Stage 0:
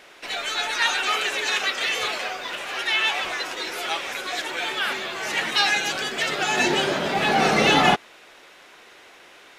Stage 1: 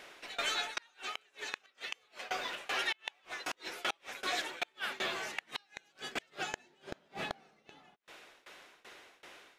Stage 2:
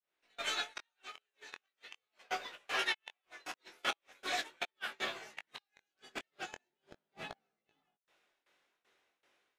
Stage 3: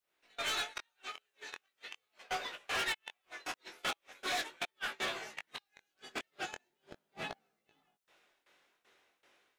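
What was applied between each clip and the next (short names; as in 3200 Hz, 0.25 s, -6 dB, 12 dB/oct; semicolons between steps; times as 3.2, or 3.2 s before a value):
tremolo saw down 2.6 Hz, depth 95%; flipped gate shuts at -18 dBFS, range -37 dB; gain -3 dB
opening faded in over 0.53 s; chorus 0.4 Hz, delay 17.5 ms, depth 6.1 ms; upward expander 2.5:1, over -50 dBFS; gain +5.5 dB
soft clip -36 dBFS, distortion -8 dB; gain +5.5 dB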